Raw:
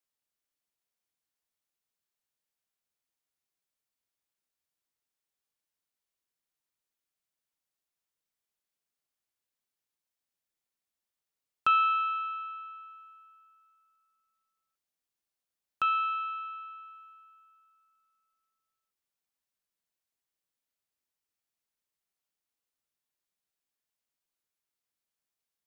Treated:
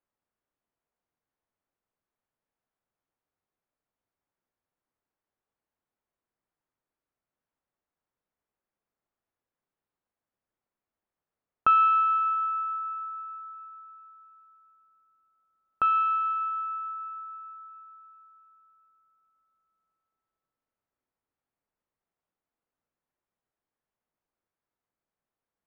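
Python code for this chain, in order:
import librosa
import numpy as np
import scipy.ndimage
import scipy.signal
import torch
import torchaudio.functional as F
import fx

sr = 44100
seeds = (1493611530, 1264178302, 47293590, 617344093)

y = scipy.signal.sosfilt(scipy.signal.butter(2, 1300.0, 'lowpass', fs=sr, output='sos'), x)
y = fx.rev_spring(y, sr, rt60_s=3.8, pass_ms=(40, 52), chirp_ms=30, drr_db=12.5)
y = y * librosa.db_to_amplitude(7.5)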